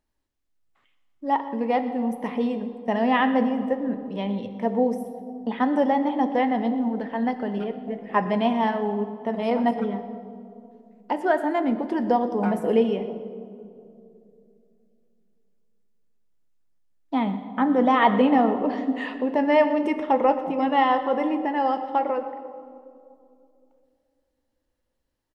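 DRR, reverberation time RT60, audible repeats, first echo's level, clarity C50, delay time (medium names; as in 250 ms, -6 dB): 7.0 dB, 2.6 s, 1, -17.5 dB, 10.0 dB, 122 ms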